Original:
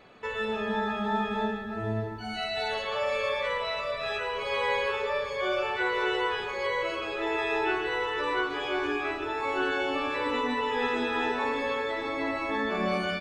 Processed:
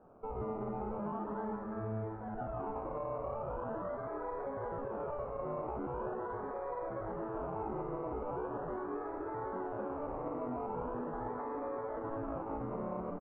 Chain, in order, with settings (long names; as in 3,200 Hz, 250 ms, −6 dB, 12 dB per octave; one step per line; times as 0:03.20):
brickwall limiter −25 dBFS, peak gain reduction 8.5 dB
sample-and-hold swept by an LFO 21×, swing 60% 0.41 Hz
low-pass filter 1,200 Hz 24 dB per octave
on a send: echo with shifted repeats 184 ms, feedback 61%, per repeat +110 Hz, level −13.5 dB
on the sum: level −5 dB